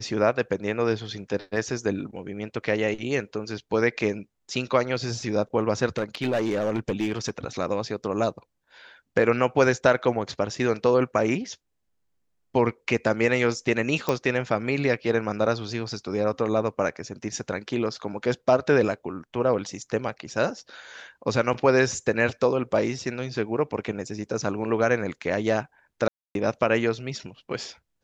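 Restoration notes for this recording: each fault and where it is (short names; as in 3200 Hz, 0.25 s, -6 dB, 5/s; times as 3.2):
5.98–7.3 clipped -20 dBFS
14.09 pop -11 dBFS
26.08–26.35 gap 0.272 s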